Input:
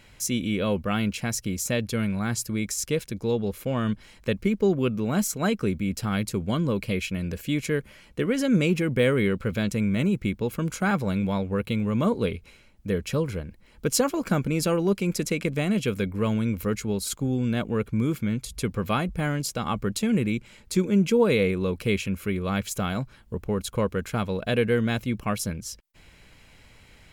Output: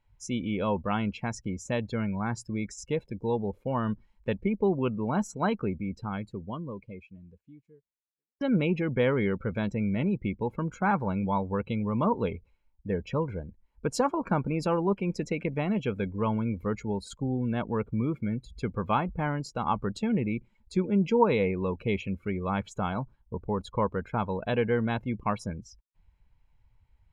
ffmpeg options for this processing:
ffmpeg -i in.wav -filter_complex "[0:a]asplit=2[link_01][link_02];[link_01]atrim=end=8.41,asetpts=PTS-STARTPTS,afade=type=out:start_time=5.52:duration=2.89:curve=qua[link_03];[link_02]atrim=start=8.41,asetpts=PTS-STARTPTS,afade=type=in:duration=0.004:curve=hsin[link_04];[link_03][link_04]concat=n=2:v=0:a=1,aemphasis=mode=reproduction:type=50kf,afftdn=noise_reduction=23:noise_floor=-40,equalizer=frequency=920:width=3.1:gain=13,volume=-4dB" out.wav

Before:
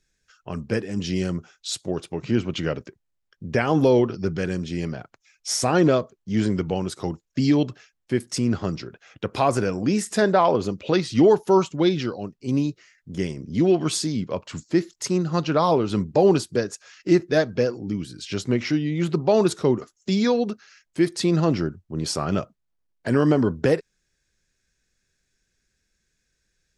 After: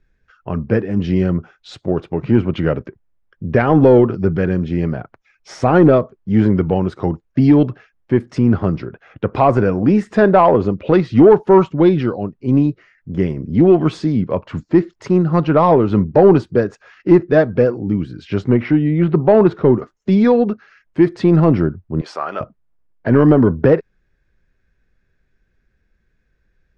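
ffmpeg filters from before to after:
ffmpeg -i in.wav -filter_complex "[0:a]asettb=1/sr,asplit=3[link_01][link_02][link_03];[link_01]atrim=end=18.534[link_04];[link_02]atrim=start=18.53:end=19.73,asetpts=PTS-STARTPTS,afade=type=in:duration=0.004:curve=qsin,afade=type=out:start_time=1.196:duration=0.004:curve=qsin,lowpass=3600[link_05];[link_03]atrim=start=19.726[link_06];[link_04][link_05]acrossfade=duration=0.004:curve1=hsin:curve2=qsin[link_07];[link_07][link_06]acrossfade=duration=0.004:curve1=qsin:curve2=hsin,asettb=1/sr,asplit=3[link_08][link_09][link_10];[link_08]atrim=end=22.014[link_11];[link_09]atrim=start=22.01:end=22.41,asetpts=PTS-STARTPTS,afade=type=in:duration=0.004:curve=qsin,afade=type=out:start_time=0.396:duration=0.004:curve=qsin,highpass=770[link_12];[link_10]atrim=start=22.406[link_13];[link_11][link_12]acrossfade=duration=0.004:curve1=hsin:curve2=qsin[link_14];[link_14][link_13]acrossfade=duration=0.004:curve1=qsin:curve2=hsin,lowpass=1700,acontrast=65,lowshelf=frequency=73:gain=6.5,volume=2dB" out.wav

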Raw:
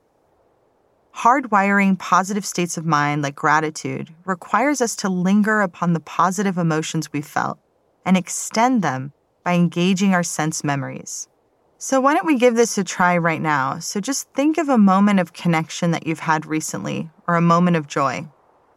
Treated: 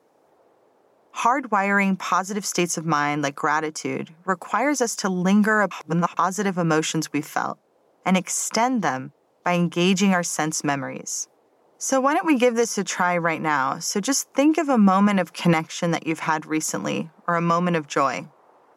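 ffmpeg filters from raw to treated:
ffmpeg -i in.wav -filter_complex "[0:a]asplit=5[link_01][link_02][link_03][link_04][link_05];[link_01]atrim=end=5.712[link_06];[link_02]atrim=start=5.708:end=6.172,asetpts=PTS-STARTPTS,areverse[link_07];[link_03]atrim=start=6.168:end=14.732[link_08];[link_04]atrim=start=14.728:end=15.672,asetpts=PTS-STARTPTS,volume=5.5dB[link_09];[link_05]atrim=start=15.668[link_10];[link_06][link_07]acrossfade=duration=0.004:curve1=hsin:curve2=hsin[link_11];[link_11][link_08]acrossfade=duration=0.004:curve1=hsin:curve2=hsin[link_12];[link_12][link_09]acrossfade=duration=0.004:curve1=hsin:curve2=hsin[link_13];[link_13][link_10]acrossfade=duration=0.004:curve1=hsin:curve2=hsin,highpass=210,alimiter=limit=-10dB:level=0:latency=1:release=426,volume=1.5dB" out.wav

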